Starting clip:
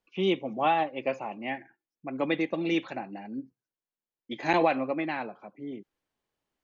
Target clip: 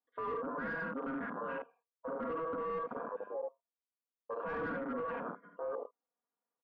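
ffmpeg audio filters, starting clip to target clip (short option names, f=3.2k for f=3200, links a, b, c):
-filter_complex "[0:a]asplit=2[a][b];[b]acompressor=threshold=-37dB:ratio=5,volume=-0.5dB[c];[a][c]amix=inputs=2:normalize=0,aemphasis=mode=reproduction:type=75fm,aeval=exprs='val(0)*sin(2*PI*810*n/s)':c=same,highpass=f=180:w=0.5412,highpass=f=180:w=1.3066,aecho=1:1:4.2:0.91,aecho=1:1:48|76:0.422|0.501,afwtdn=0.0355,lowshelf=f=330:g=-5,asoftclip=type=tanh:threshold=-25dB,lowpass=1.1k,alimiter=level_in=12dB:limit=-24dB:level=0:latency=1:release=35,volume=-12dB,volume=4dB"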